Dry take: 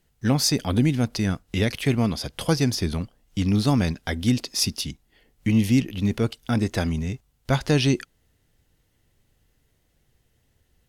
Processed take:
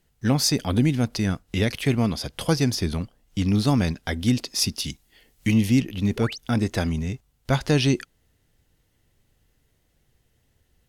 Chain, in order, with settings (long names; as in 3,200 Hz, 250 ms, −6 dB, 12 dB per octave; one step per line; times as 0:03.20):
0:04.84–0:05.54: high-shelf EQ 2,400 Hz +9.5 dB
0:06.16–0:06.38: sound drawn into the spectrogram rise 350–6,700 Hz −36 dBFS